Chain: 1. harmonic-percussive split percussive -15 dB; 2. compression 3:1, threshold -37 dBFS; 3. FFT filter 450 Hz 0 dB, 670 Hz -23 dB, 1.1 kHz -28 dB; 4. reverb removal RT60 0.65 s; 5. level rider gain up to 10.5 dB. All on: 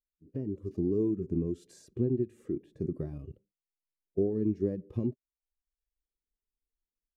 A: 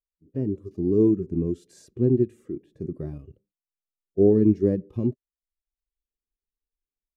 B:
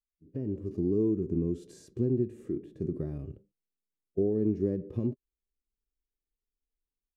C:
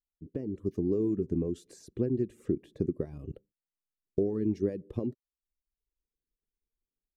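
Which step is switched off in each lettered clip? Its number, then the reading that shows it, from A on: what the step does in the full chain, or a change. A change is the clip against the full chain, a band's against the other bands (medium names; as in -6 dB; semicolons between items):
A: 2, mean gain reduction 5.0 dB; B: 4, loudness change +1.5 LU; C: 1, crest factor change +2.0 dB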